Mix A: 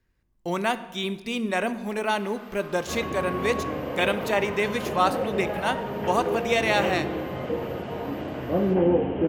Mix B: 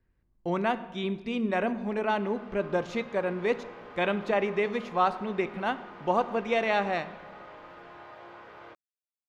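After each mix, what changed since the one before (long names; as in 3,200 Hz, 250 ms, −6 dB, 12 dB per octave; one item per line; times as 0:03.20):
second sound: muted
master: add head-to-tape spacing loss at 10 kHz 25 dB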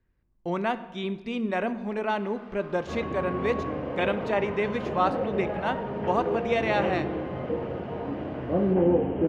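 second sound: unmuted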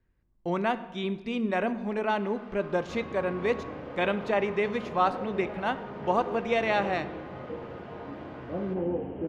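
second sound −8.5 dB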